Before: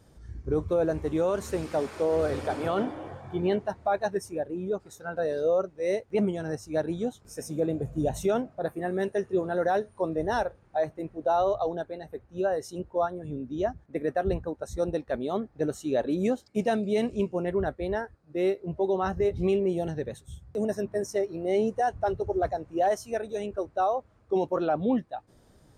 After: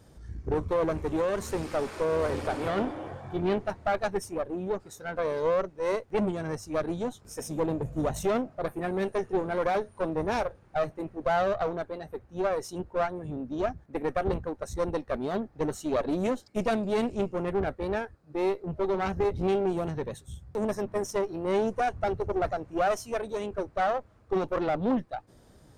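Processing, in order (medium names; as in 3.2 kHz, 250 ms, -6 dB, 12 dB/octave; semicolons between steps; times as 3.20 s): single-diode clipper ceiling -33.5 dBFS; trim +2.5 dB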